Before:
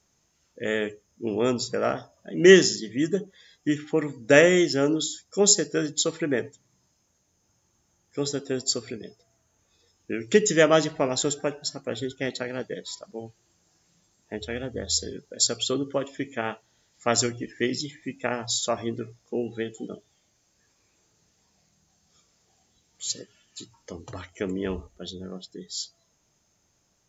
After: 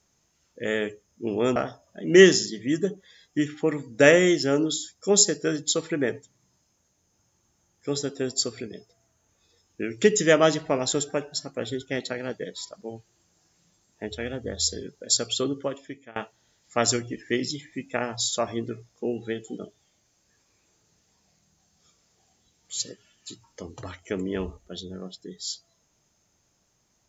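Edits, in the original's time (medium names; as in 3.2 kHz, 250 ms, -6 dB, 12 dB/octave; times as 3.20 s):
1.56–1.86 s: delete
15.80–16.46 s: fade out linear, to -23.5 dB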